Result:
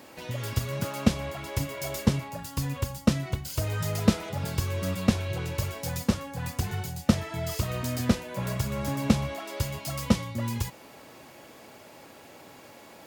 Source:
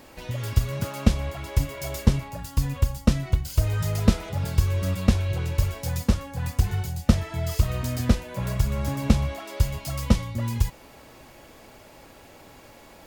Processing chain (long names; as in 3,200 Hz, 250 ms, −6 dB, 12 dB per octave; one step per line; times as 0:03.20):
high-pass filter 130 Hz 12 dB per octave